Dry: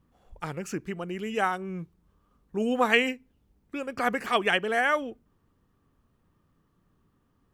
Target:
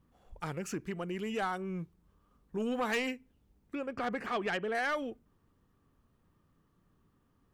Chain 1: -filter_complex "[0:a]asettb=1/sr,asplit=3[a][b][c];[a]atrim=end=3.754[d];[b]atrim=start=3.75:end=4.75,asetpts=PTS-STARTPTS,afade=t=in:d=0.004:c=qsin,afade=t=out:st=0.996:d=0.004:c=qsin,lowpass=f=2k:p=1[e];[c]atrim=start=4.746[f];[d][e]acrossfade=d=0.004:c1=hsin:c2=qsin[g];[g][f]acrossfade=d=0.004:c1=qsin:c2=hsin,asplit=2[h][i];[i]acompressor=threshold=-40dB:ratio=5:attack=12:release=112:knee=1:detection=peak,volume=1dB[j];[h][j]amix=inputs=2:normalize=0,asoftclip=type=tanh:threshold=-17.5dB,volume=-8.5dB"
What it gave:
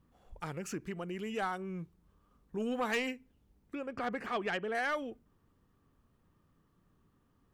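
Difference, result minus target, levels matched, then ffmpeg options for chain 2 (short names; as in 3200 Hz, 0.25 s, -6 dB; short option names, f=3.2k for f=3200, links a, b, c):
compressor: peak gain reduction +7 dB
-filter_complex "[0:a]asettb=1/sr,asplit=3[a][b][c];[a]atrim=end=3.754[d];[b]atrim=start=3.75:end=4.75,asetpts=PTS-STARTPTS,afade=t=in:d=0.004:c=qsin,afade=t=out:st=0.996:d=0.004:c=qsin,lowpass=f=2k:p=1[e];[c]atrim=start=4.746[f];[d][e]acrossfade=d=0.004:c1=hsin:c2=qsin[g];[g][f]acrossfade=d=0.004:c1=qsin:c2=hsin,asplit=2[h][i];[i]acompressor=threshold=-31dB:ratio=5:attack=12:release=112:knee=1:detection=peak,volume=1dB[j];[h][j]amix=inputs=2:normalize=0,asoftclip=type=tanh:threshold=-17.5dB,volume=-8.5dB"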